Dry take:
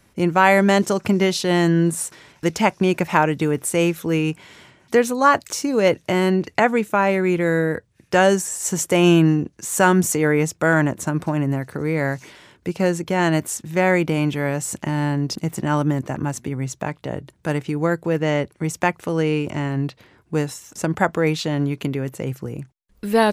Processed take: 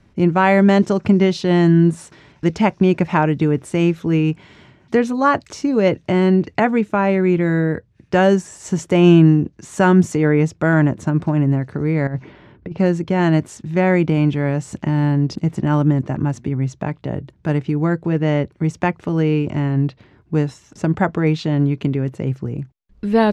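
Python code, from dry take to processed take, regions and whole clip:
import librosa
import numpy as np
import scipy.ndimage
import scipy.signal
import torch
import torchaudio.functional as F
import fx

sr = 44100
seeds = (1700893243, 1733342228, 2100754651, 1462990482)

y = fx.chain(x, sr, fx.spacing_loss(db_at_10k=29),
    fx.over_compress(threshold_db=-28.0, ratio=-0.5), at=(12.07, 12.78))
y = scipy.signal.sosfilt(scipy.signal.butter(2, 4900.0, 'lowpass', fs=sr, output='sos'), y)
y = fx.low_shelf(y, sr, hz=430.0, db=9.5)
y = fx.notch(y, sr, hz=500.0, q=12.0)
y = F.gain(torch.from_numpy(y), -2.5).numpy()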